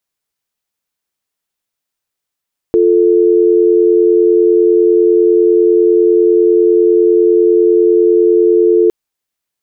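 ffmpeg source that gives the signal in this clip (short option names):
-f lavfi -i "aevalsrc='0.355*(sin(2*PI*350*t)+sin(2*PI*440*t))':d=6.16:s=44100"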